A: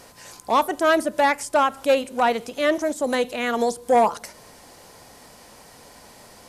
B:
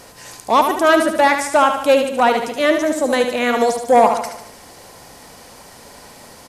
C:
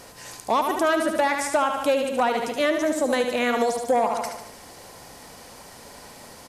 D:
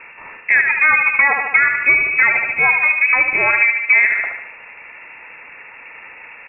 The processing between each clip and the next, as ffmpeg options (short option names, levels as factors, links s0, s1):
-af "aecho=1:1:74|148|222|296|370|444:0.447|0.232|0.121|0.0628|0.0327|0.017,volume=1.78"
-af "acompressor=threshold=0.178:ratio=6,volume=0.708"
-af "lowpass=f=2400:t=q:w=0.5098,lowpass=f=2400:t=q:w=0.6013,lowpass=f=2400:t=q:w=0.9,lowpass=f=2400:t=q:w=2.563,afreqshift=-2800,volume=2.51"